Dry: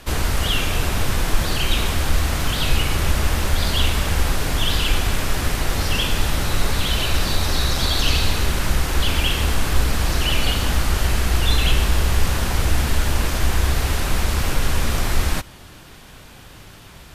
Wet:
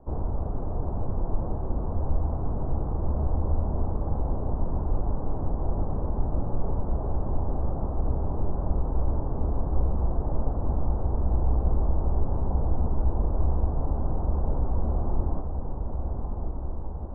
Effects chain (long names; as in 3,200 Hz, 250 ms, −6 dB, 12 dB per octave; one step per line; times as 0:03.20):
Butterworth low-pass 930 Hz 36 dB per octave
on a send: feedback delay with all-pass diffusion 1,182 ms, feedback 70%, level −6.5 dB
on the sum: level −7 dB